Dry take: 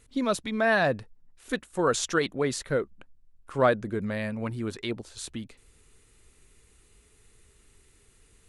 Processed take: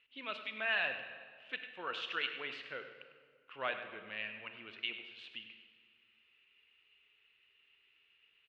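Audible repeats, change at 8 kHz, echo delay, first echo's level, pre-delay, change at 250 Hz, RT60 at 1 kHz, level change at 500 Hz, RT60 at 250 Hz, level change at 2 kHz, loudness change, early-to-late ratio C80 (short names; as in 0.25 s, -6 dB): 1, under -35 dB, 0.101 s, -12.5 dB, 24 ms, -25.5 dB, 1.7 s, -19.5 dB, 2.1 s, -6.5 dB, -11.5 dB, 8.0 dB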